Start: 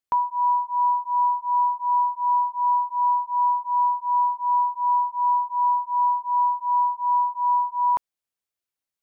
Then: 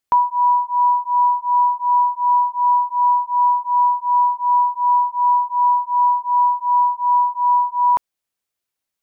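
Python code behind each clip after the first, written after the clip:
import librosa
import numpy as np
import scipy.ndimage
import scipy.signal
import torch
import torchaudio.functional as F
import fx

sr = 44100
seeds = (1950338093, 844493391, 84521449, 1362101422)

y = fx.rider(x, sr, range_db=10, speed_s=0.5)
y = y * 10.0 ** (5.5 / 20.0)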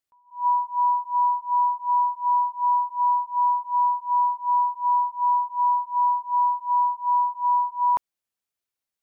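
y = fx.attack_slew(x, sr, db_per_s=190.0)
y = y * 10.0 ** (-5.5 / 20.0)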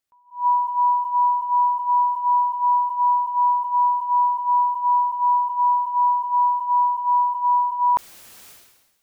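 y = fx.sustainer(x, sr, db_per_s=50.0)
y = y * 10.0 ** (2.5 / 20.0)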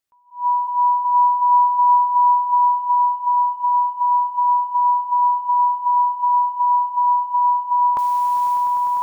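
y = fx.echo_swell(x, sr, ms=100, loudest=8, wet_db=-12.5)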